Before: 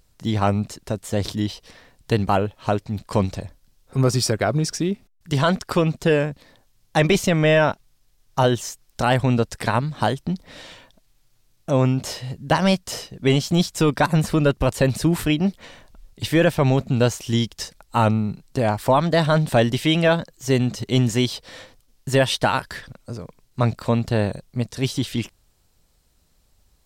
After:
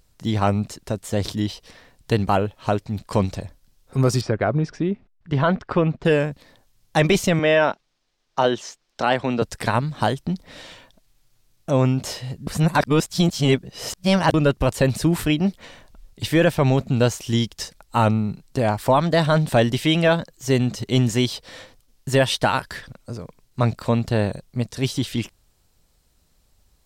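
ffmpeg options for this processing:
-filter_complex "[0:a]asettb=1/sr,asplit=3[s0][s1][s2];[s0]atrim=end=4.214[s3];[s1]atrim=start=4.21:end=6.05,asetpts=PTS-STARTPTS,afade=t=in:d=0.004:c=qsin,afade=t=out:st=1.836:d=0.004:c=qsin,lowpass=2200[s4];[s2]atrim=start=6.046[s5];[s3][s4]acrossfade=d=0.004:c1=hsin:c2=qsin[s6];[s6][s5]acrossfade=d=0.004:c1=qsin:c2=hsin,asettb=1/sr,asplit=3[s7][s8][s9];[s7]atrim=end=7.394[s10];[s8]atrim=start=7.39:end=9.42,asetpts=PTS-STARTPTS,afade=t=in:d=0.004:c=qsin,afade=t=out:st=2.026:d=0.004:c=qsin,acrossover=split=210 6200:gain=0.158 1 0.0794[s11][s12][s13];[s11][s12][s13]amix=inputs=3:normalize=0[s14];[s9]atrim=start=9.416[s15];[s10][s14]acrossfade=d=0.004:c1=hsin:c2=qsin[s16];[s16][s15]acrossfade=d=0.004:c1=qsin:c2=hsin,asplit=3[s17][s18][s19];[s17]atrim=end=12.472[s20];[s18]atrim=start=12.468:end=14.342,asetpts=PTS-STARTPTS,areverse[s21];[s19]atrim=start=14.338[s22];[s20][s21]acrossfade=d=0.004:c1=hsin:c2=hsin[s23];[s23][s22]acrossfade=d=0.004:c1=hsin:c2=hsin"

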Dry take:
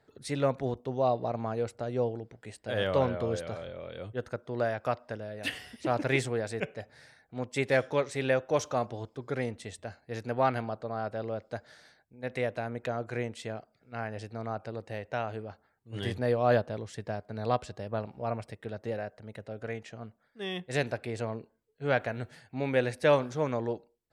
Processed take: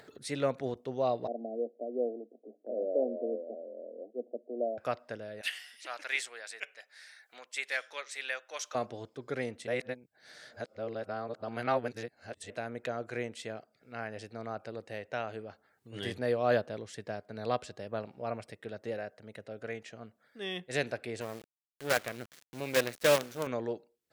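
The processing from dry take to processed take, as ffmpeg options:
-filter_complex "[0:a]asettb=1/sr,asplit=3[s0][s1][s2];[s0]atrim=end=1.274[s3];[s1]atrim=start=1.27:end=4.78,asetpts=PTS-STARTPTS,afade=t=in:d=0.004:c=qsin,afade=t=out:st=3.506:d=0.004:c=qsin,asuperpass=centerf=400:order=20:qfactor=0.78[s4];[s2]atrim=start=4.776[s5];[s3][s4]acrossfade=d=0.004:c1=hsin:c2=qsin[s6];[s6][s5]acrossfade=d=0.004:c1=qsin:c2=hsin,asettb=1/sr,asplit=3[s7][s8][s9];[s7]atrim=end=5.414[s10];[s8]atrim=start=5.41:end=8.75,asetpts=PTS-STARTPTS,afade=t=in:d=0.004:c=qsin,afade=t=out:st=3.336:d=0.004:c=qsin,highpass=1300[s11];[s9]atrim=start=8.746[s12];[s10][s11]acrossfade=d=0.004:c1=hsin:c2=qsin[s13];[s13][s12]acrossfade=d=0.004:c1=qsin:c2=hsin,asettb=1/sr,asplit=3[s14][s15][s16];[s14]atrim=end=21.214[s17];[s15]atrim=start=21.21:end=23.47,asetpts=PTS-STARTPTS,afade=t=in:d=0.004:c=qsin,afade=t=out:st=2.256:d=0.004:c=qsin,acrusher=bits=5:dc=4:mix=0:aa=0.000001[s18];[s16]atrim=start=23.466[s19];[s17][s18]acrossfade=d=0.004:c1=hsin:c2=qsin[s20];[s20][s19]acrossfade=d=0.004:c1=qsin:c2=hsin,asplit=3[s21][s22][s23];[s21]atrim=end=9.672[s24];[s22]atrim=start=9.668:end=12.502,asetpts=PTS-STARTPTS,areverse[s25];[s23]atrim=start=12.498[s26];[s24][s25]acrossfade=d=0.004:c1=hsin:c2=hsin[s27];[s27][s26]acrossfade=d=0.004:c1=hsin:c2=hsin,highpass=f=280:p=1,equalizer=f=910:t=o:w=0.76:g=-5.5,acompressor=mode=upward:threshold=0.00562:ratio=2.5"

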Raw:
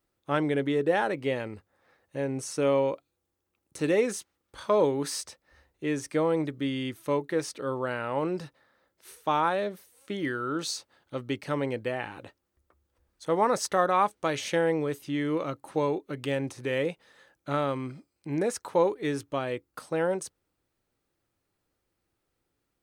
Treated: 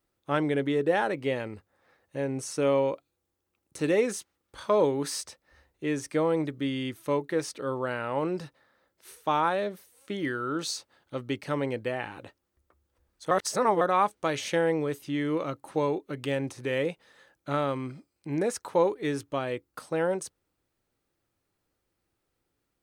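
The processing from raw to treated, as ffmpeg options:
-filter_complex "[0:a]asplit=3[s0][s1][s2];[s0]atrim=end=13.312[s3];[s1]atrim=start=13.308:end=13.812,asetpts=PTS-STARTPTS,areverse[s4];[s2]atrim=start=13.808[s5];[s3][s4]acrossfade=d=0.004:c1=hsin:c2=hsin[s6];[s6][s5]acrossfade=d=0.004:c1=hsin:c2=hsin"

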